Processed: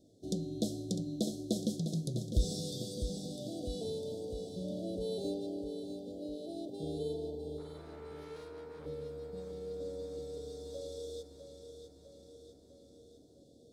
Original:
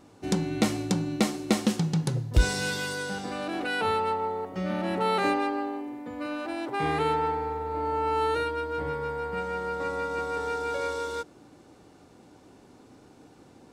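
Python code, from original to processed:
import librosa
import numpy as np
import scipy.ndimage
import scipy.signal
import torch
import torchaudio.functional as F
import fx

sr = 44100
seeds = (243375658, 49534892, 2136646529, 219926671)

y = scipy.signal.sosfilt(scipy.signal.cheby1(5, 1.0, [680.0, 3400.0], 'bandstop', fs=sr, output='sos'), x)
y = fx.tube_stage(y, sr, drive_db=38.0, bias=0.65, at=(7.58, 8.86))
y = fx.echo_feedback(y, sr, ms=653, feedback_pct=59, wet_db=-8.5)
y = y * librosa.db_to_amplitude(-8.5)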